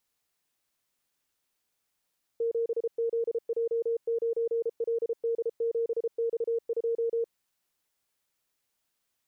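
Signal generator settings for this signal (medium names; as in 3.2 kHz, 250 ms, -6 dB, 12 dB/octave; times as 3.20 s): Morse "7ZJ9LD7X2" 33 wpm 462 Hz -25 dBFS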